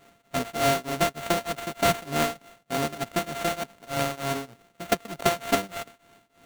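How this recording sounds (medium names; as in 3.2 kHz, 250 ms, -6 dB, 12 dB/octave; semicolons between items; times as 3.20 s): a buzz of ramps at a fixed pitch in blocks of 64 samples; tremolo triangle 3.3 Hz, depth 95%; aliases and images of a low sample rate 5.1 kHz, jitter 20%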